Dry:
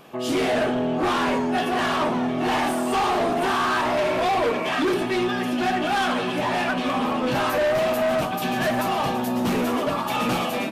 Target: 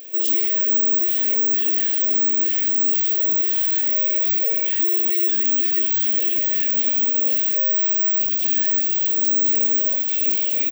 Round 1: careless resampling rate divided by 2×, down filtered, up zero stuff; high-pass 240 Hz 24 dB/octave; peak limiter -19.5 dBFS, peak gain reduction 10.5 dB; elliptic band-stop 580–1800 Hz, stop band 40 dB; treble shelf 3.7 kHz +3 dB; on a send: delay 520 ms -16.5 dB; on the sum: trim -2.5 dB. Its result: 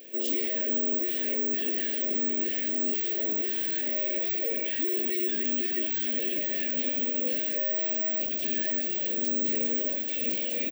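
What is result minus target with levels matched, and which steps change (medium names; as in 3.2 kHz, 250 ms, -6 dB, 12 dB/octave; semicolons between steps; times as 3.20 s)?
4 kHz band +5.0 dB
change: treble shelf 3.7 kHz +13 dB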